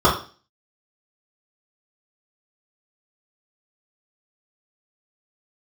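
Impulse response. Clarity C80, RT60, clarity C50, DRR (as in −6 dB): 12.5 dB, 0.35 s, 7.0 dB, −9.0 dB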